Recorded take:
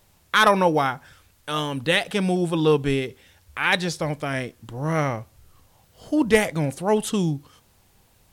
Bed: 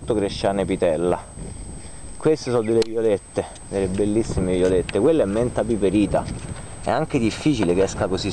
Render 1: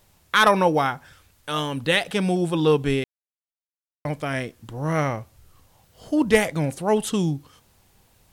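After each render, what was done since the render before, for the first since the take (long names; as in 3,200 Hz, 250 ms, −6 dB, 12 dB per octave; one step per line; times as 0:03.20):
0:03.04–0:04.05: silence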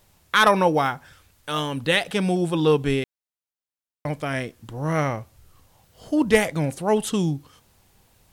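0:00.82–0:01.59: one scale factor per block 7 bits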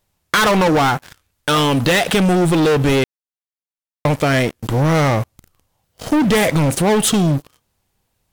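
leveller curve on the samples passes 5
downward compressor, threshold −13 dBFS, peak gain reduction 5 dB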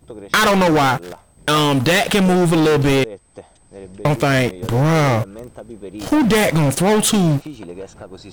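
mix in bed −14 dB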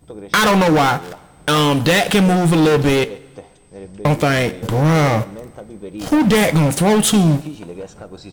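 single-tap delay 135 ms −24 dB
coupled-rooms reverb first 0.23 s, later 1.9 s, from −22 dB, DRR 10.5 dB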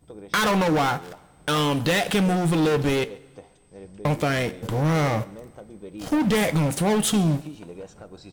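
level −7.5 dB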